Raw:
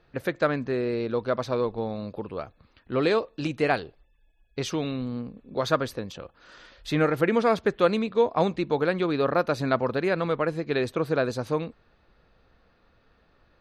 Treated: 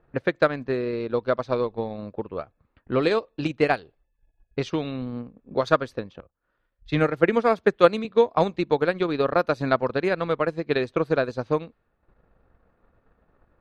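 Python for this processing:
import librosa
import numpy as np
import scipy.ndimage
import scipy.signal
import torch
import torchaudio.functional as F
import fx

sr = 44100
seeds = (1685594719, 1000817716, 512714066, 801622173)

y = fx.transient(x, sr, attack_db=5, sustain_db=-9)
y = fx.env_lowpass(y, sr, base_hz=1400.0, full_db=-18.0)
y = fx.band_widen(y, sr, depth_pct=70, at=(6.2, 8.05))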